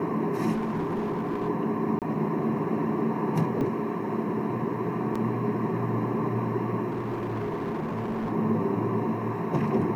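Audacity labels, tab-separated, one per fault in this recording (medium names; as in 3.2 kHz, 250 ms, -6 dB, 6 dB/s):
0.510000	1.490000	clipped -25 dBFS
1.990000	2.020000	dropout 28 ms
3.610000	3.610000	dropout 2.3 ms
5.150000	5.160000	dropout 5.1 ms
6.900000	8.330000	clipped -26.5 dBFS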